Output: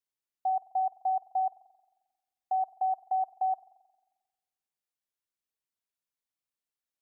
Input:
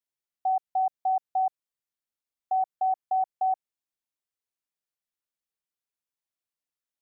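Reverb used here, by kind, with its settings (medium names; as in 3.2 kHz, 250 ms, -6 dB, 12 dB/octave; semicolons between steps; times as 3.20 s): spring tank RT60 1.2 s, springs 44 ms, chirp 50 ms, DRR 16 dB; trim -2.5 dB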